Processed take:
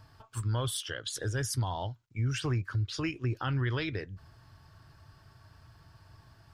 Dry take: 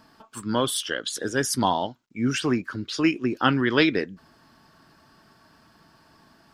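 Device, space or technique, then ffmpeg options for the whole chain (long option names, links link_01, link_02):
car stereo with a boomy subwoofer: -af "lowshelf=frequency=150:width_type=q:width=3:gain=12.5,alimiter=limit=-18dB:level=0:latency=1:release=248,volume=-5dB"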